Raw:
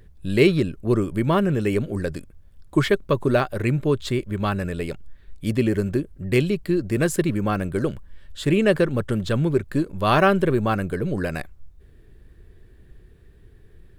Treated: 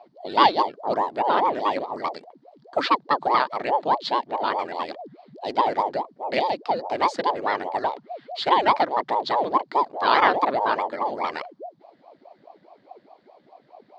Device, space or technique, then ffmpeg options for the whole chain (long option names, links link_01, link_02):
voice changer toy: -filter_complex "[0:a]aeval=exprs='val(0)*sin(2*PI*430*n/s+430*0.7/4.8*sin(2*PI*4.8*n/s))':channel_layout=same,highpass=490,equalizer=frequency=500:width_type=q:width=4:gain=-4,equalizer=frequency=930:width_type=q:width=4:gain=4,equalizer=frequency=1400:width_type=q:width=4:gain=-3,equalizer=frequency=2600:width_type=q:width=4:gain=-6,equalizer=frequency=4500:width_type=q:width=4:gain=8,lowpass=frequency=4800:width=0.5412,lowpass=frequency=4800:width=1.3066,asettb=1/sr,asplit=3[link_01][link_02][link_03];[link_01]atrim=end=7.834[link_04];[link_02]atrim=start=7.83:end=8.54,asetpts=PTS-STARTPTS,afade=type=in:duration=0.004:curve=qsin,afade=type=out:start_time=0.706:duration=0.004:curve=qsin,equalizer=frequency=2500:width=0.75:gain=4.5[link_05];[link_03]atrim=start=8.536[link_06];[link_04][link_05]acrossfade=duration=0.004:curve1=hsin:curve2=qsin[link_07];[link_07][link_06]acrossfade=duration=0.004:curve1=qsin:curve2=hsin,volume=4dB"